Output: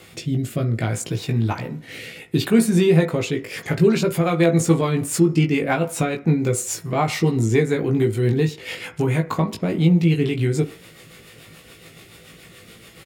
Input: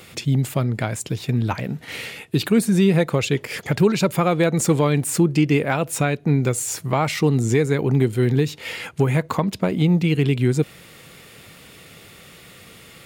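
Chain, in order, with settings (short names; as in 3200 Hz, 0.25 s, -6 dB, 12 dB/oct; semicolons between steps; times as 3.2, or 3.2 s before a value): wow and flutter 24 cents; rotary speaker horn 0.65 Hz, later 7 Hz, at 3.32; doubler 18 ms -4 dB; on a send: reverb RT60 0.50 s, pre-delay 3 ms, DRR 10 dB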